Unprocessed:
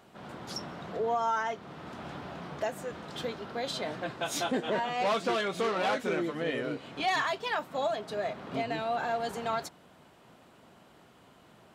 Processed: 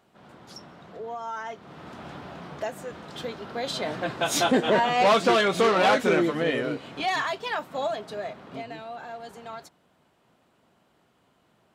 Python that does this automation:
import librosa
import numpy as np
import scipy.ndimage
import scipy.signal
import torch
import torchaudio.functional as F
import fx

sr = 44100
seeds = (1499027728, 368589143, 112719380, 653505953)

y = fx.gain(x, sr, db=fx.line((1.23, -6.0), (1.79, 1.0), (3.22, 1.0), (4.48, 9.0), (6.17, 9.0), (7.11, 2.0), (7.94, 2.0), (8.95, -7.5)))